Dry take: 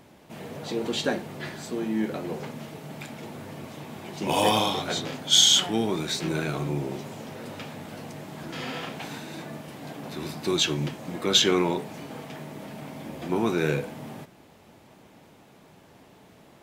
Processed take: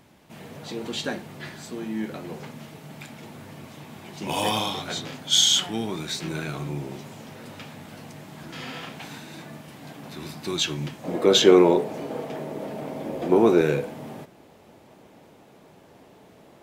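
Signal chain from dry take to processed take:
parametric band 480 Hz −4 dB 1.7 octaves, from 0:11.04 +12.5 dB, from 0:13.61 +5 dB
level −1 dB

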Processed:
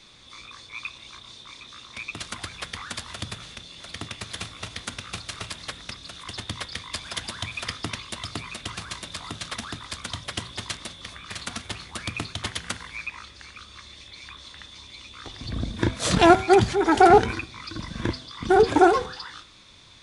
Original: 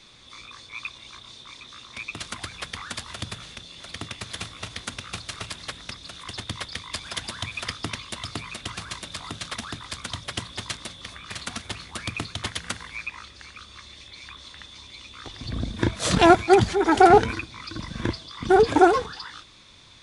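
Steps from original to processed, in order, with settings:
hum removal 126.9 Hz, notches 27

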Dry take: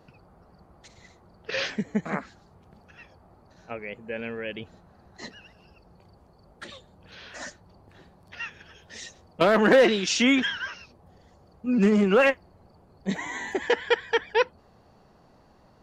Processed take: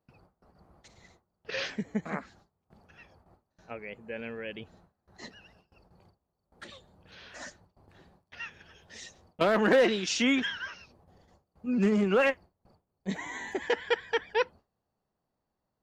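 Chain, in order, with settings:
noise gate with hold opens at −45 dBFS
level −5 dB

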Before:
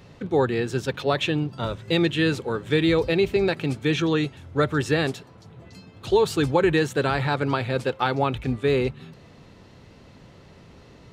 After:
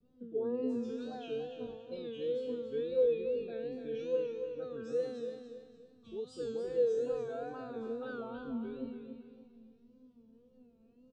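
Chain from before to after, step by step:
spectral envelope exaggerated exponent 1.5
Butterworth low-pass 8,600 Hz
low shelf with overshoot 610 Hz +9 dB, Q 1.5
tuned comb filter 240 Hz, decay 1.1 s, mix 100%
tape wow and flutter 120 cents
parametric band 2,000 Hz −12.5 dB 0.26 octaves
on a send: repeating echo 285 ms, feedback 34%, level −8 dB
on the sum: level −2 dB

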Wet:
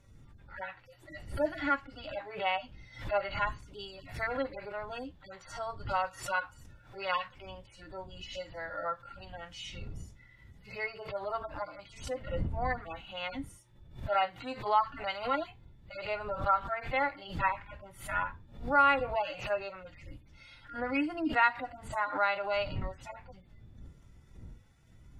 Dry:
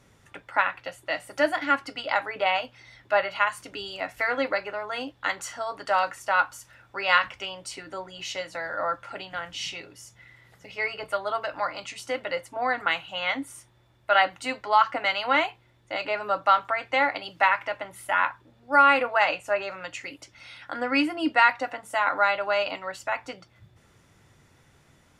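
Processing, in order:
harmonic-percussive split with one part muted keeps harmonic
wind on the microphone 95 Hz −42 dBFS
background raised ahead of every attack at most 120 dB per second
level −6.5 dB

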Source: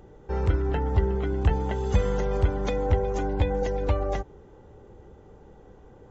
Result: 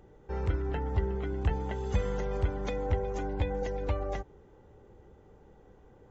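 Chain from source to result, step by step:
parametric band 2,100 Hz +2.5 dB 0.77 octaves
level −6.5 dB

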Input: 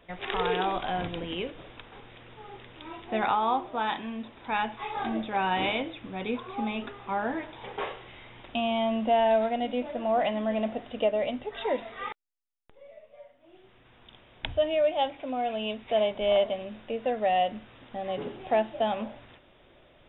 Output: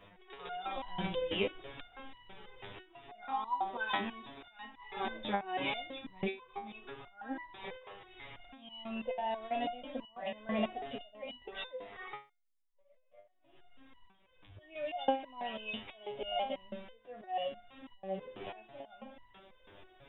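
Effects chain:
volume swells 577 ms
step-sequenced resonator 6.1 Hz 100–990 Hz
level +11 dB

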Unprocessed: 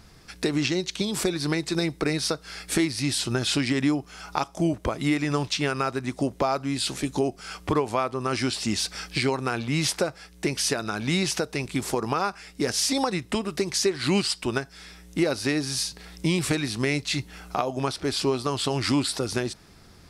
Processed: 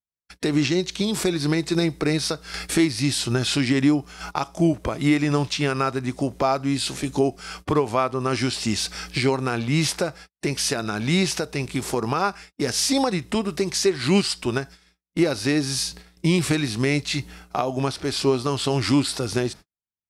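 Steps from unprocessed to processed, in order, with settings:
noise gate −41 dBFS, range −57 dB
0:02.54–0:04.31: upward compression, threshold −27 dBFS
harmonic and percussive parts rebalanced harmonic +5 dB

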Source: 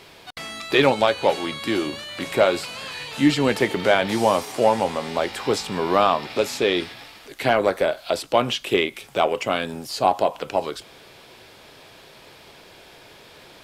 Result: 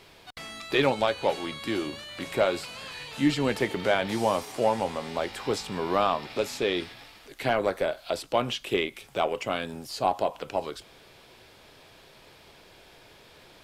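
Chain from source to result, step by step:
low-shelf EQ 65 Hz +9 dB
level −6.5 dB

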